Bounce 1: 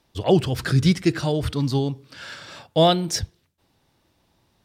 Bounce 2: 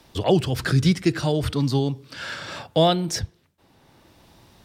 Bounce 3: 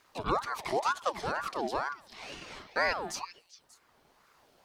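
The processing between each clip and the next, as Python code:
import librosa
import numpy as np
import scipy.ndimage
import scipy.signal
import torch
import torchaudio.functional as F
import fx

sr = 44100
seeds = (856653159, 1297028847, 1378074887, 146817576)

y1 = fx.band_squash(x, sr, depth_pct=40)
y2 = fx.echo_stepped(y1, sr, ms=196, hz=1400.0, octaves=1.4, feedback_pct=70, wet_db=-8.0)
y2 = fx.quant_dither(y2, sr, seeds[0], bits=12, dither='triangular')
y2 = fx.ring_lfo(y2, sr, carrier_hz=900.0, swing_pct=45, hz=2.1)
y2 = y2 * librosa.db_to_amplitude(-8.5)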